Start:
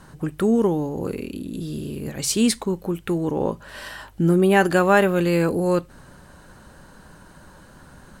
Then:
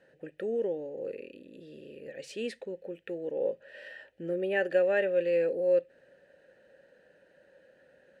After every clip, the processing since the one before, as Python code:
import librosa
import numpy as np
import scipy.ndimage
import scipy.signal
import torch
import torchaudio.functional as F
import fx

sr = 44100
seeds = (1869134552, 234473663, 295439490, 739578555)

y = fx.vowel_filter(x, sr, vowel='e')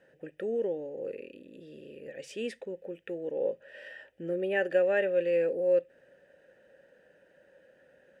y = fx.notch(x, sr, hz=4200.0, q=6.3)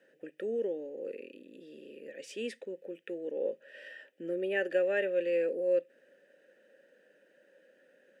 y = scipy.signal.sosfilt(scipy.signal.butter(4, 220.0, 'highpass', fs=sr, output='sos'), x)
y = fx.peak_eq(y, sr, hz=880.0, db=-8.5, octaves=1.1)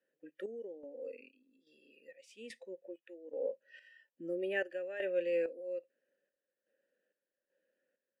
y = fx.noise_reduce_blind(x, sr, reduce_db=16)
y = fx.chopper(y, sr, hz=1.2, depth_pct=65, duty_pct=55)
y = y * 10.0 ** (-3.0 / 20.0)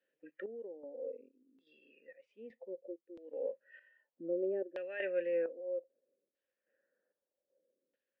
y = fx.low_shelf(x, sr, hz=70.0, db=-11.0)
y = fx.filter_lfo_lowpass(y, sr, shape='saw_down', hz=0.63, low_hz=320.0, high_hz=3500.0, q=1.8)
y = y * 10.0 ** (-1.5 / 20.0)